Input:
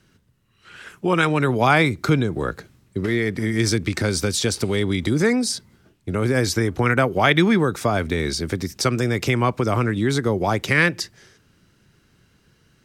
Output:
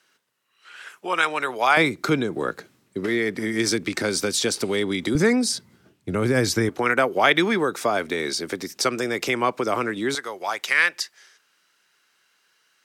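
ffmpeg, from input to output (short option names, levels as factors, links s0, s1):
-af "asetnsamples=n=441:p=0,asendcmd='1.77 highpass f 240;5.15 highpass f 120;6.69 highpass f 330;10.15 highpass f 940',highpass=670"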